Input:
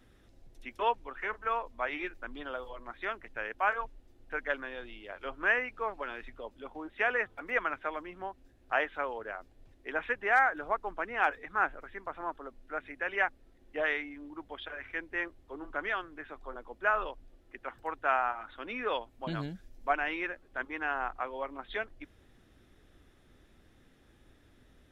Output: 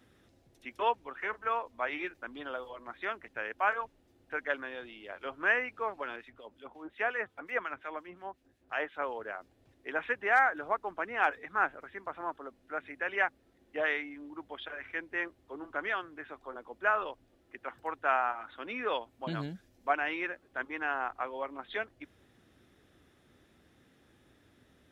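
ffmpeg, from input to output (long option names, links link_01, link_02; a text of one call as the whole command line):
ffmpeg -i in.wav -filter_complex "[0:a]asettb=1/sr,asplit=3[link_01][link_02][link_03];[link_01]atrim=end=6.164[link_04];[link_02]atrim=start=6.16:end=9.02,asetpts=PTS-STARTPTS,afade=type=in:duration=0.004:curve=qsin,afade=type=out:start_time=2.856:duration=0.004:curve=qsin,acrossover=split=1800[link_05][link_06];[link_05]aeval=exprs='val(0)*(1-0.7/2+0.7/2*cos(2*PI*5.6*n/s))':channel_layout=same[link_07];[link_06]aeval=exprs='val(0)*(1-0.7/2-0.7/2*cos(2*PI*5.6*n/s))':channel_layout=same[link_08];[link_07][link_08]amix=inputs=2:normalize=0[link_09];[link_03]atrim=start=9.016[link_10];[link_04][link_09]acrossfade=duration=0.004:curve1=hsin:curve2=qsin[link_11];[link_11][link_10]acrossfade=duration=0.004:curve1=qsin:curve2=hsin,highpass=89" out.wav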